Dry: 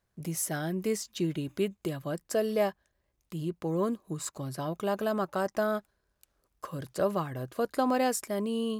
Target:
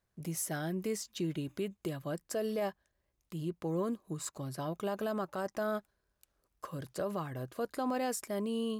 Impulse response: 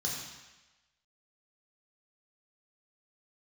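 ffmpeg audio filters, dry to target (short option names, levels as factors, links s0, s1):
-af "alimiter=limit=0.075:level=0:latency=1:release=62,volume=0.668"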